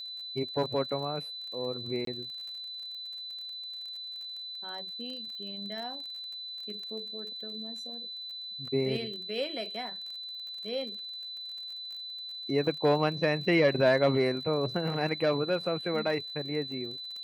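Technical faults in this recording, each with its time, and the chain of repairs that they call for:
crackle 33 per s -40 dBFS
whine 4 kHz -38 dBFS
2.05–2.07 s: dropout 23 ms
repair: de-click; band-stop 4 kHz, Q 30; interpolate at 2.05 s, 23 ms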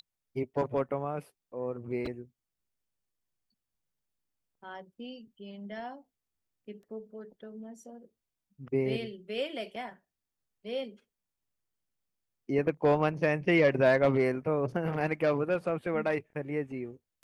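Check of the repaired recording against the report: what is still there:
nothing left

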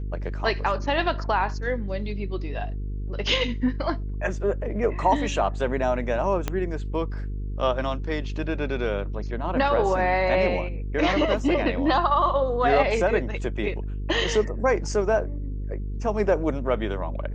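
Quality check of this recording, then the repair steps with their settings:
buzz 50 Hz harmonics 9 -30 dBFS
6.48 s: pop -11 dBFS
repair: de-click; de-hum 50 Hz, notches 9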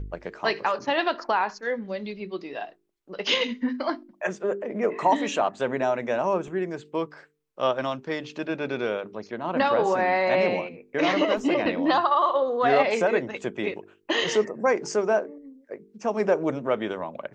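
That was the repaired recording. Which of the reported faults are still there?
6.48 s: pop

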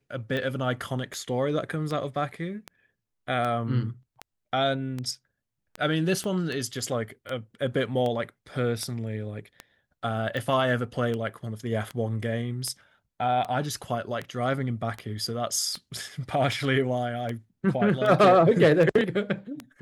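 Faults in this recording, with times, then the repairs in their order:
tick 78 rpm -19 dBFS
6.24 s: pop -22 dBFS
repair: de-click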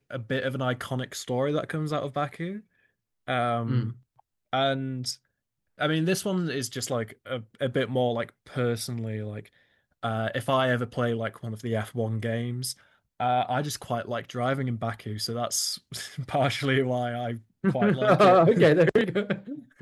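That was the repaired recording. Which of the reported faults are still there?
6.24 s: pop

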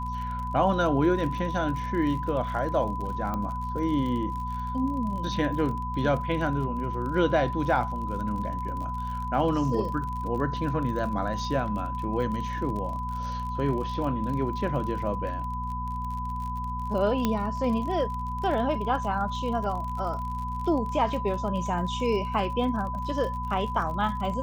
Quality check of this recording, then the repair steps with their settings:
crackle 42 per s -34 dBFS
hum 60 Hz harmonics 4 -34 dBFS
whine 1 kHz -32 dBFS
3.34 s: pop -19 dBFS
17.25 s: pop -11 dBFS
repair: de-click; de-hum 60 Hz, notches 4; band-stop 1 kHz, Q 30

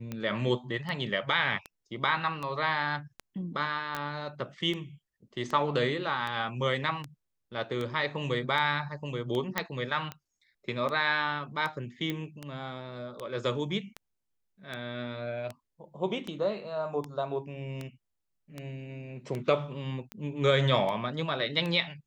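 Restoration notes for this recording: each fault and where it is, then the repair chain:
tick 78 rpm -22 dBFS
3.95 s: pop -18 dBFS
9.58 s: pop -11 dBFS
12.10 s: pop -19 dBFS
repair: de-click

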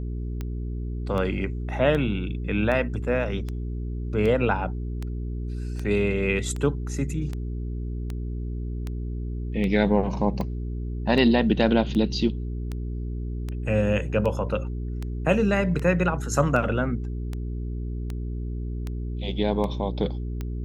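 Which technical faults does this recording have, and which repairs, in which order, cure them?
hum 60 Hz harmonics 7 -30 dBFS
tick 78 rpm -19 dBFS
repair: de-click; de-hum 60 Hz, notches 7

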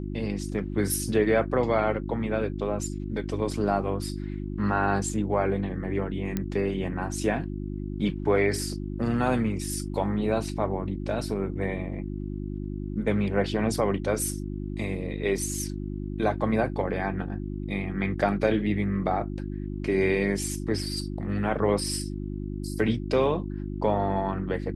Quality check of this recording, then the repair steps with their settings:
hum 50 Hz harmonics 7 -33 dBFS
6.37 s: pop -14 dBFS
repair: de-click; de-hum 50 Hz, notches 7

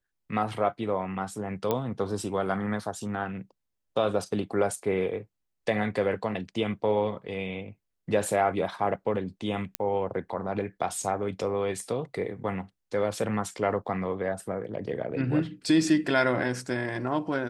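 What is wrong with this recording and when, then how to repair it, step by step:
1.71 s: pop -13 dBFS
9.75 s: pop -11 dBFS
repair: de-click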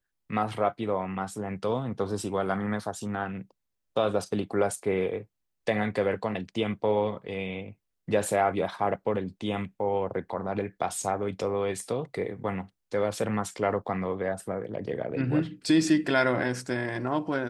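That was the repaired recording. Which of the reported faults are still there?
nothing left

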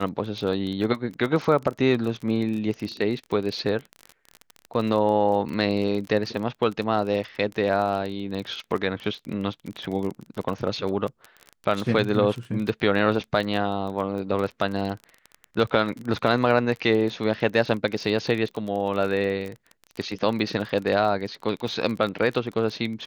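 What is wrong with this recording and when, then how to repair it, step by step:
crackle 24 per s -29 dBFS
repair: de-click

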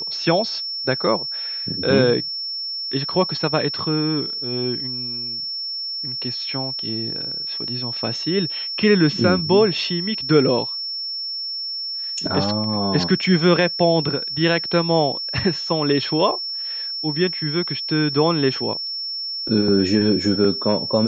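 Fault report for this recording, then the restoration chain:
whine 5.4 kHz -25 dBFS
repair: band-stop 5.4 kHz, Q 30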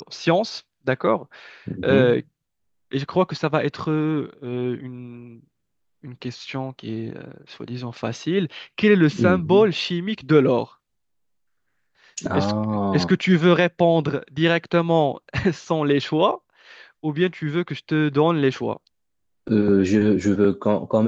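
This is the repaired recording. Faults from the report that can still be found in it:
nothing left

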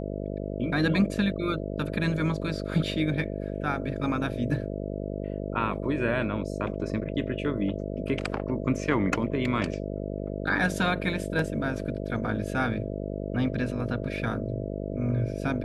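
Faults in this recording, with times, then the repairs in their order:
buzz 50 Hz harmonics 13 -33 dBFS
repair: de-hum 50 Hz, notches 13

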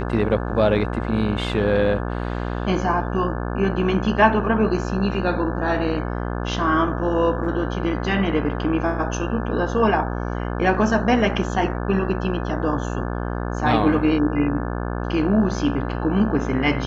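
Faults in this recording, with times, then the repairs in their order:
buzz 60 Hz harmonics 29 -26 dBFS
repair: de-hum 60 Hz, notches 29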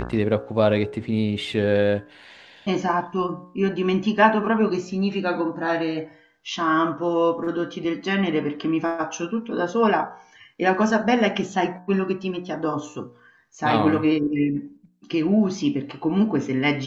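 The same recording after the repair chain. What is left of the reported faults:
nothing left

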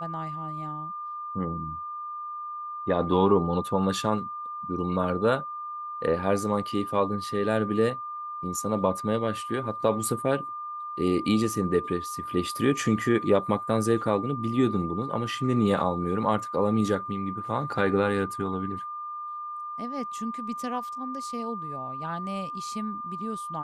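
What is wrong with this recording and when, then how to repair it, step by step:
whine 1.2 kHz -33 dBFS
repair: band-stop 1.2 kHz, Q 30

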